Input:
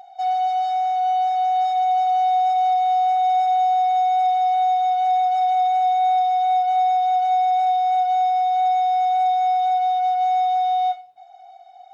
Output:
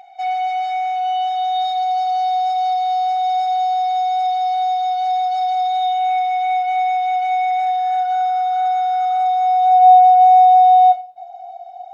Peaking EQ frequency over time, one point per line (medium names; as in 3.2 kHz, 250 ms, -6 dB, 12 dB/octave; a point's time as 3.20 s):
peaking EQ +13.5 dB 0.46 oct
0.84 s 2.3 kHz
1.90 s 4.6 kHz
5.65 s 4.6 kHz
6.17 s 2.3 kHz
7.35 s 2.3 kHz
8.30 s 1.4 kHz
8.98 s 1.4 kHz
10.05 s 680 Hz